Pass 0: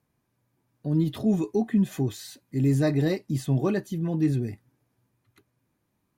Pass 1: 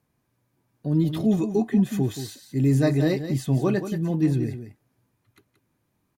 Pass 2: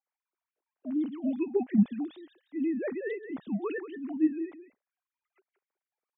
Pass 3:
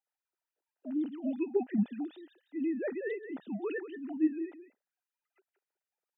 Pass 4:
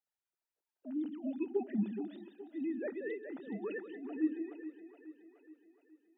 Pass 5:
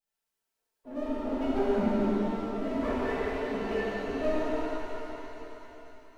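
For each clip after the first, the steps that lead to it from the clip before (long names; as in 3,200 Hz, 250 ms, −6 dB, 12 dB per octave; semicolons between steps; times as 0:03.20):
single-tap delay 178 ms −10 dB; level +2 dB
three sine waves on the formant tracks; level −8 dB
high-pass filter 240 Hz; notch comb filter 1,100 Hz; level −1 dB
echo with a time of its own for lows and highs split 310 Hz, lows 83 ms, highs 421 ms, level −10.5 dB; level −4.5 dB
lower of the sound and its delayed copy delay 4.5 ms; hum removal 99.9 Hz, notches 3; reverb with rising layers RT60 3 s, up +7 semitones, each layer −8 dB, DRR −10 dB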